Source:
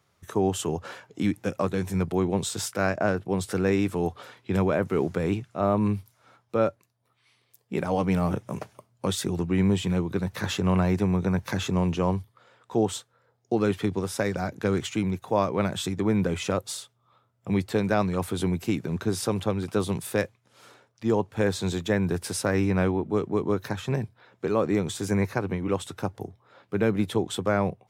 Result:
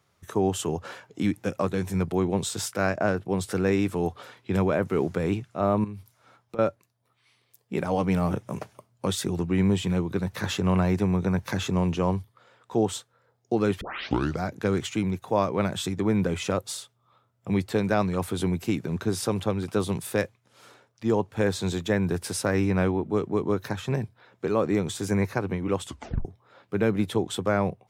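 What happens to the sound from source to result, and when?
0:05.84–0:06.59: downward compressor 10 to 1, threshold −34 dBFS
0:13.81: tape start 0.61 s
0:25.85: tape stop 0.40 s

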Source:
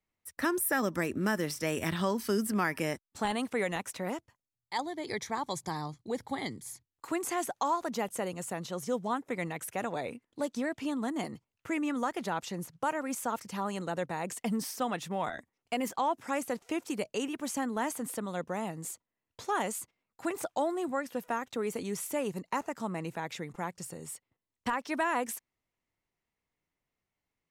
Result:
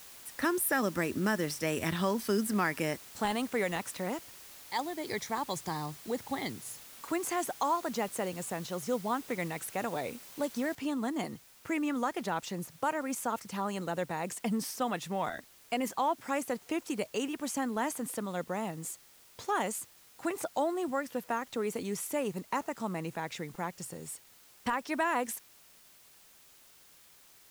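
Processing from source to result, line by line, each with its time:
0:06.66–0:07.18: one scale factor per block 7 bits
0:10.75: noise floor change −51 dB −59 dB

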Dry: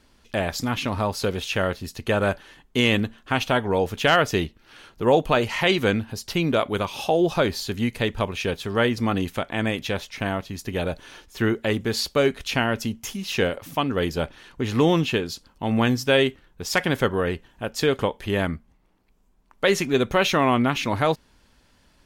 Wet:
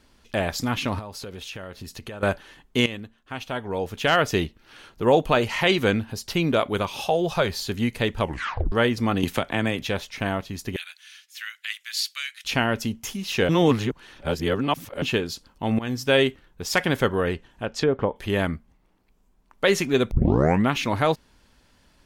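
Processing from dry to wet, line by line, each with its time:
0:00.99–0:02.23: downward compressor 8 to 1, threshold −33 dBFS
0:02.86–0:04.31: fade in quadratic, from −14 dB
0:07.02–0:07.59: parametric band 290 Hz −12.5 dB 0.52 octaves
0:08.22: tape stop 0.50 s
0:09.23–0:09.84: multiband upward and downward compressor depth 100%
0:10.76–0:12.45: inverse Chebyshev high-pass filter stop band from 410 Hz, stop band 70 dB
0:13.49–0:15.02: reverse
0:15.79–0:16.22: fade in equal-power, from −19 dB
0:17.33–0:18.16: treble cut that deepens with the level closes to 960 Hz, closed at −17.5 dBFS
0:20.11: tape start 0.57 s

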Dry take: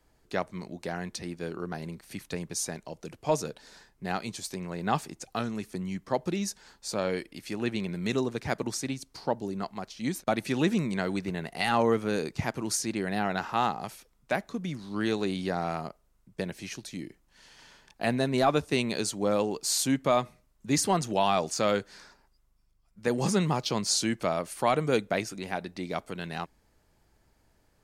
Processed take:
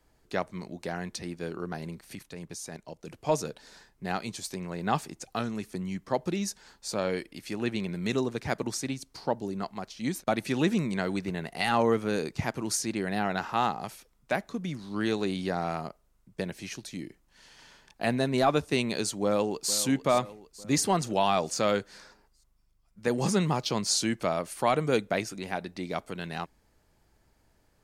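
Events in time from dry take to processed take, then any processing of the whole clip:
0:02.15–0:03.07: output level in coarse steps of 10 dB
0:19.23–0:19.73: delay throw 450 ms, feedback 55%, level −14 dB

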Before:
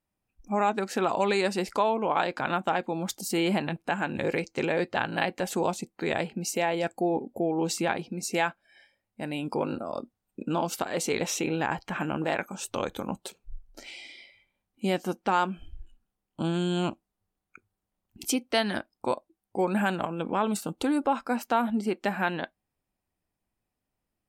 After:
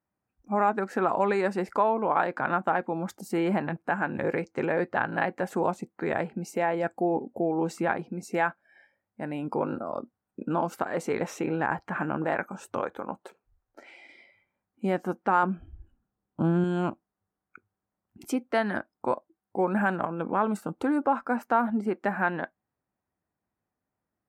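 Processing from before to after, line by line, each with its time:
0:12.80–0:14.09: bass and treble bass −11 dB, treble −6 dB
0:15.43–0:16.64: spectral tilt −2 dB per octave
whole clip: high-pass filter 80 Hz; high shelf with overshoot 2,300 Hz −11.5 dB, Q 1.5

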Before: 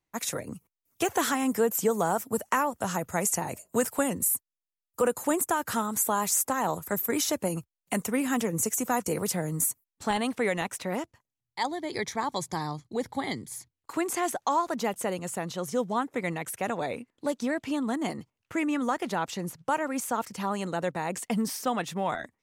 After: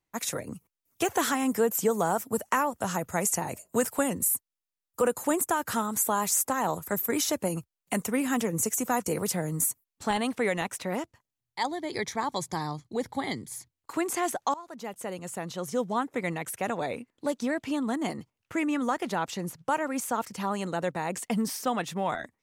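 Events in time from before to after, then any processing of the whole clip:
0:14.54–0:16.19: fade in equal-power, from −20.5 dB

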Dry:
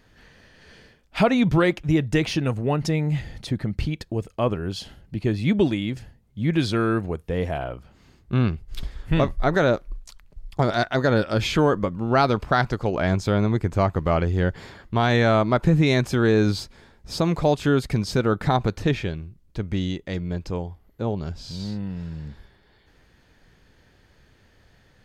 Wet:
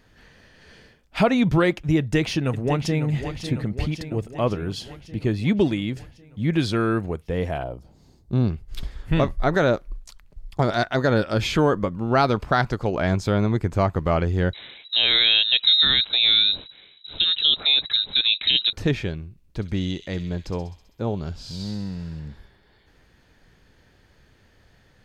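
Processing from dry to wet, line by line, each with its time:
0:01.98–0:03.08: delay throw 550 ms, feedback 65%, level −10 dB
0:07.63–0:08.50: flat-topped bell 1,900 Hz −12 dB
0:14.53–0:18.73: voice inversion scrambler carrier 3,900 Hz
0:19.24–0:22.20: delay with a high-pass on its return 65 ms, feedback 70%, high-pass 3,100 Hz, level −6 dB

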